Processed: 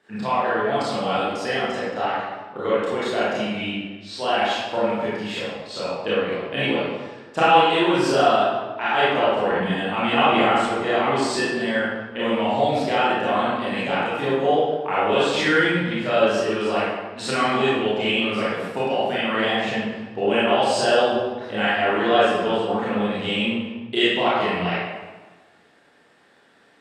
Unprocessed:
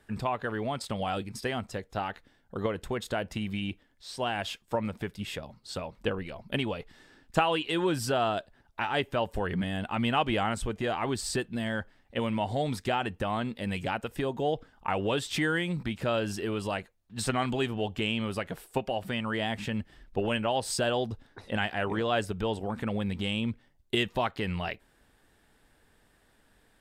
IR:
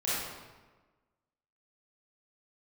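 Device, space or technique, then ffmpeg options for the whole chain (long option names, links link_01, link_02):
supermarket ceiling speaker: -filter_complex "[0:a]highpass=240,lowpass=5900[link_01];[1:a]atrim=start_sample=2205[link_02];[link_01][link_02]afir=irnorm=-1:irlink=0,volume=2.5dB"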